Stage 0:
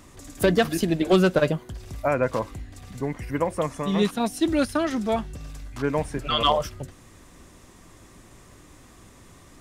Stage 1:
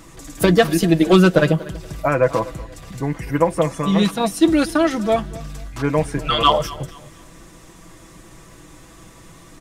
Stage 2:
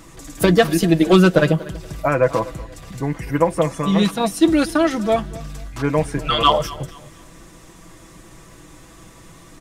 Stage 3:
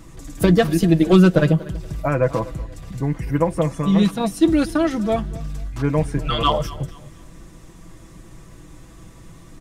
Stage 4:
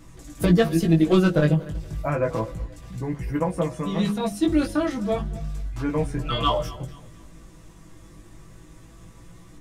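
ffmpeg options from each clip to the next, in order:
-af "aecho=1:1:6.1:0.56,aecho=1:1:240|480|720:0.106|0.0339|0.0108,volume=5dB"
-af anull
-af "lowshelf=f=260:g=10,volume=-5dB"
-af "bandreject=f=69.08:t=h:w=4,bandreject=f=138.16:t=h:w=4,bandreject=f=207.24:t=h:w=4,bandreject=f=276.32:t=h:w=4,bandreject=f=345.4:t=h:w=4,bandreject=f=414.48:t=h:w=4,bandreject=f=483.56:t=h:w=4,bandreject=f=552.64:t=h:w=4,bandreject=f=621.72:t=h:w=4,bandreject=f=690.8:t=h:w=4,bandreject=f=759.88:t=h:w=4,flanger=delay=16.5:depth=3.6:speed=0.31,volume=-1dB"

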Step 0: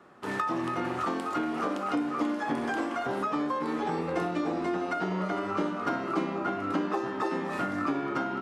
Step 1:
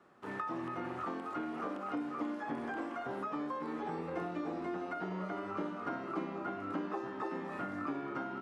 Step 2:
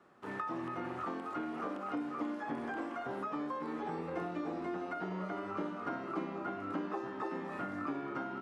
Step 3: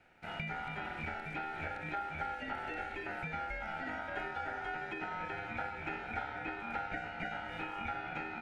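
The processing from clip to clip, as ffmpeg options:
-filter_complex "[0:a]acrossover=split=2700[a][b];[b]acompressor=threshold=-56dB:ratio=4:attack=1:release=60[c];[a][c]amix=inputs=2:normalize=0,volume=-8.5dB"
-af anull
-af "aeval=exprs='val(0)*sin(2*PI*1100*n/s)':c=same,volume=1.5dB"

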